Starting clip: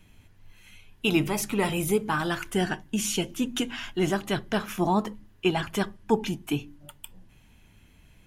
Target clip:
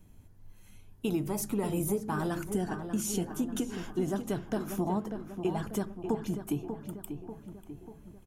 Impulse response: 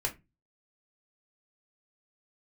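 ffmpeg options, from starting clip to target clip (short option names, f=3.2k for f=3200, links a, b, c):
-filter_complex "[0:a]equalizer=f=2.6k:w=0.67:g=-15,acompressor=threshold=-27dB:ratio=6,asplit=2[a][b];[b]adelay=591,lowpass=f=2.3k:p=1,volume=-8dB,asplit=2[c][d];[d]adelay=591,lowpass=f=2.3k:p=1,volume=0.54,asplit=2[e][f];[f]adelay=591,lowpass=f=2.3k:p=1,volume=0.54,asplit=2[g][h];[h]adelay=591,lowpass=f=2.3k:p=1,volume=0.54,asplit=2[i][j];[j]adelay=591,lowpass=f=2.3k:p=1,volume=0.54,asplit=2[k][l];[l]adelay=591,lowpass=f=2.3k:p=1,volume=0.54[m];[a][c][e][g][i][k][m]amix=inputs=7:normalize=0"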